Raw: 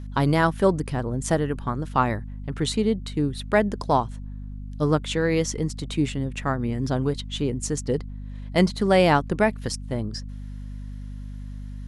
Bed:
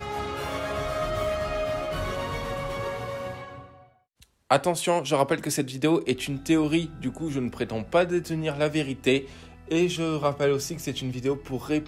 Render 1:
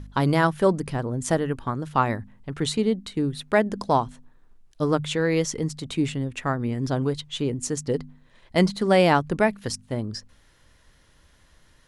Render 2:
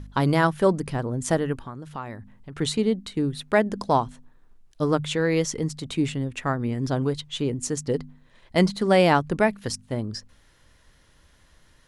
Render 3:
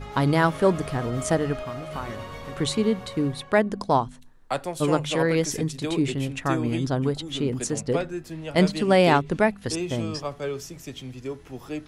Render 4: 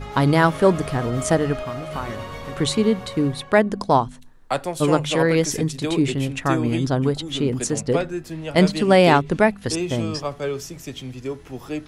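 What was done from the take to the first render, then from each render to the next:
de-hum 50 Hz, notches 5
1.62–2.56 s: compression 2:1, threshold -40 dBFS
add bed -7 dB
trim +4 dB; peak limiter -3 dBFS, peak gain reduction 1 dB

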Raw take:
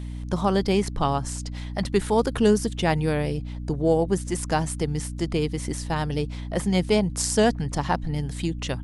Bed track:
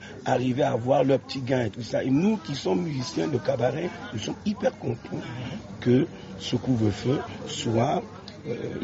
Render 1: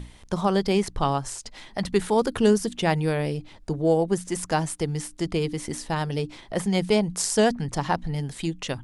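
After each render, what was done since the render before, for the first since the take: hum notches 60/120/180/240/300 Hz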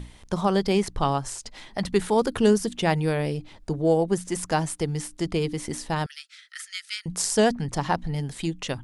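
6.06–7.06 s: rippled Chebyshev high-pass 1.3 kHz, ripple 3 dB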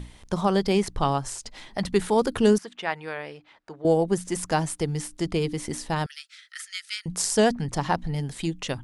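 2.58–3.85 s: band-pass filter 1.5 kHz, Q 0.99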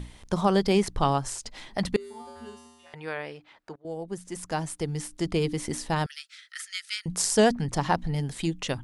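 1.96–2.94 s: feedback comb 80 Hz, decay 1.4 s, harmonics odd, mix 100%; 3.76–5.47 s: fade in, from -21.5 dB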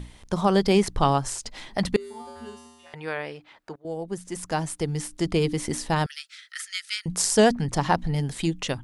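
level rider gain up to 3 dB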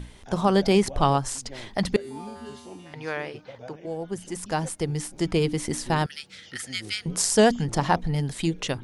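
add bed track -18.5 dB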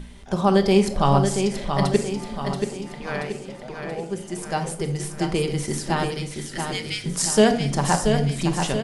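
on a send: feedback delay 680 ms, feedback 51%, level -6 dB; on the sum: simulated room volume 880 m³, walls furnished, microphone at 1.2 m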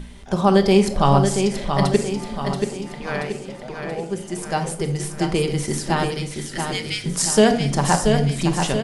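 trim +2.5 dB; peak limiter -3 dBFS, peak gain reduction 1.5 dB

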